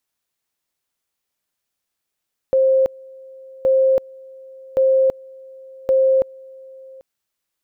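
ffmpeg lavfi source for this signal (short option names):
-f lavfi -i "aevalsrc='pow(10,(-11.5-25.5*gte(mod(t,1.12),0.33))/20)*sin(2*PI*529*t)':d=4.48:s=44100"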